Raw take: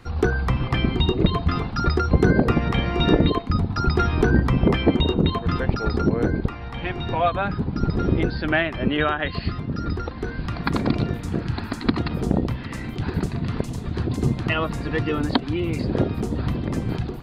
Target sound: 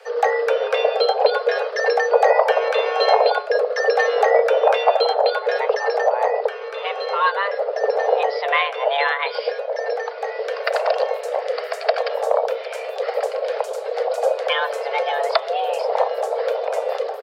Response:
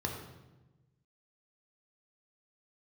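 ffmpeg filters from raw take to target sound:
-filter_complex "[0:a]asplit=2[a][b];[b]asetrate=29433,aresample=44100,atempo=1.49831,volume=-17dB[c];[a][c]amix=inputs=2:normalize=0,afreqshift=400,bandreject=f=143.5:t=h:w=4,bandreject=f=287:t=h:w=4,bandreject=f=430.5:t=h:w=4,bandreject=f=574:t=h:w=4,bandreject=f=717.5:t=h:w=4,bandreject=f=861:t=h:w=4,bandreject=f=1.0045k:t=h:w=4,bandreject=f=1.148k:t=h:w=4,bandreject=f=1.2915k:t=h:w=4,bandreject=f=1.435k:t=h:w=4,bandreject=f=1.5785k:t=h:w=4,bandreject=f=1.722k:t=h:w=4,bandreject=f=1.8655k:t=h:w=4,bandreject=f=2.009k:t=h:w=4,bandreject=f=2.1525k:t=h:w=4,bandreject=f=2.296k:t=h:w=4,bandreject=f=2.4395k:t=h:w=4,bandreject=f=2.583k:t=h:w=4,bandreject=f=2.7265k:t=h:w=4,bandreject=f=2.87k:t=h:w=4,bandreject=f=3.0135k:t=h:w=4,bandreject=f=3.157k:t=h:w=4,bandreject=f=3.3005k:t=h:w=4,bandreject=f=3.444k:t=h:w=4,bandreject=f=3.5875k:t=h:w=4,bandreject=f=3.731k:t=h:w=4,volume=2dB"

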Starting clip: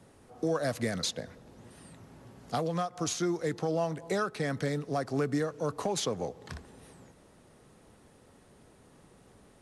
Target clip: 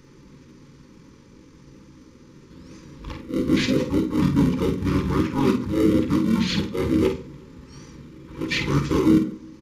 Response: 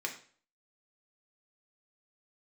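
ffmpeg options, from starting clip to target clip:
-filter_complex "[0:a]areverse,bandreject=f=60:t=h:w=6,bandreject=f=120:t=h:w=6,bandreject=f=180:t=h:w=6,bandreject=f=240:t=h:w=6,bandreject=f=300:t=h:w=6,asplit=4[a][b][c][d];[b]asetrate=35002,aresample=44100,atempo=1.25992,volume=-3dB[e];[c]asetrate=52444,aresample=44100,atempo=0.840896,volume=-16dB[f];[d]asetrate=66075,aresample=44100,atempo=0.66742,volume=-13dB[g];[a][e][f][g]amix=inputs=4:normalize=0,asplit=2[h][i];[i]acrusher=samples=34:mix=1:aa=0.000001,volume=-8dB[j];[h][j]amix=inputs=2:normalize=0,asetrate=28595,aresample=44100,atempo=1.54221,asuperstop=centerf=700:order=12:qfactor=2.5,asplit=2[k][l];[l]adelay=50,volume=-8dB[m];[k][m]amix=inputs=2:normalize=0,asplit=2[n][o];[o]adelay=355.7,volume=-30dB,highshelf=f=4k:g=-8[p];[n][p]amix=inputs=2:normalize=0,asplit=2[q][r];[1:a]atrim=start_sample=2205,lowshelf=f=430:g=10[s];[r][s]afir=irnorm=-1:irlink=0,volume=-2dB[t];[q][t]amix=inputs=2:normalize=0"

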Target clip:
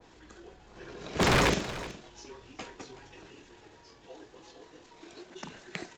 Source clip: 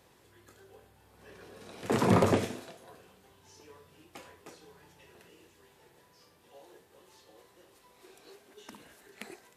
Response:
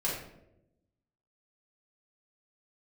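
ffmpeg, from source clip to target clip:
-af "aresample=16000,aresample=44100,atempo=1.6,aeval=exprs='0.0531*(abs(mod(val(0)/0.0531+3,4)-2)-1)':c=same,aecho=1:1:374:0.168,afreqshift=-42,adynamicequalizer=threshold=0.00282:dfrequency=1700:dqfactor=0.7:tfrequency=1700:tqfactor=0.7:attack=5:release=100:ratio=0.375:range=2.5:mode=boostabove:tftype=highshelf,volume=7dB"

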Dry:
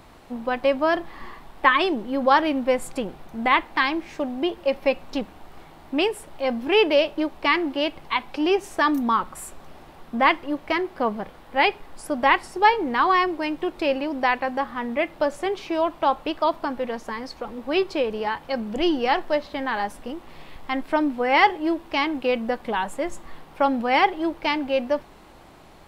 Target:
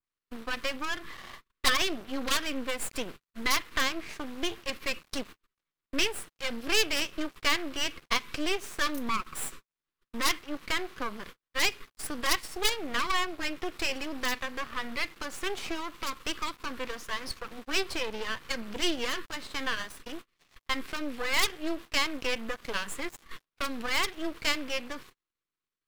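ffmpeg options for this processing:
-filter_complex "[0:a]aeval=exprs='0.266*(abs(mod(val(0)/0.266+3,4)-2)-1)':c=same,tiltshelf=f=830:g=-6.5,agate=range=-41dB:threshold=-39dB:ratio=16:detection=peak,acrossover=split=170|3000[a][b][c];[b]acompressor=threshold=-24dB:ratio=4[d];[a][d][c]amix=inputs=3:normalize=0,asuperstop=centerf=720:order=8:qfactor=1.4,aeval=exprs='max(val(0),0)':c=same,adynamicequalizer=threshold=0.00708:dfrequency=3000:dqfactor=0.7:tfrequency=3000:tqfactor=0.7:attack=5:release=100:ratio=0.375:range=2.5:mode=cutabove:tftype=highshelf,volume=1.5dB"

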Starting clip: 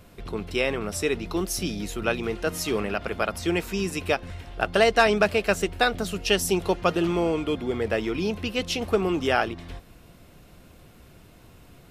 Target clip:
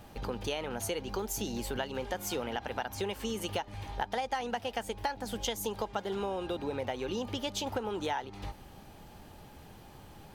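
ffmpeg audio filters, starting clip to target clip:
-af "equalizer=f=760:t=o:w=0.32:g=10,acompressor=threshold=-30dB:ratio=6,asetrate=50715,aresample=44100,volume=-1.5dB"

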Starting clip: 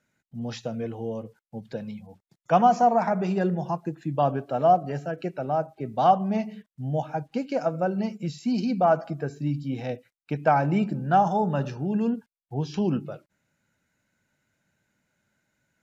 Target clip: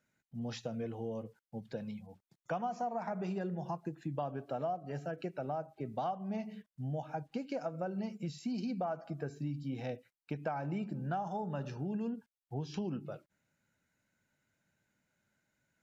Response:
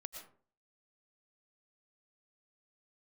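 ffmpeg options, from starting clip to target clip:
-af "acompressor=threshold=-28dB:ratio=6,volume=-6dB"

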